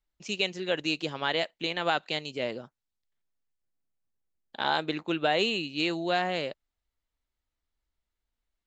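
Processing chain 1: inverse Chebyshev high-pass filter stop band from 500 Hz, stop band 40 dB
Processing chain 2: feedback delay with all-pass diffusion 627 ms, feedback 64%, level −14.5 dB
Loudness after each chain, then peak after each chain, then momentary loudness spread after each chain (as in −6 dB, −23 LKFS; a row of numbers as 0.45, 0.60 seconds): −32.0, −29.5 LKFS; −14.5, −11.5 dBFS; 9, 20 LU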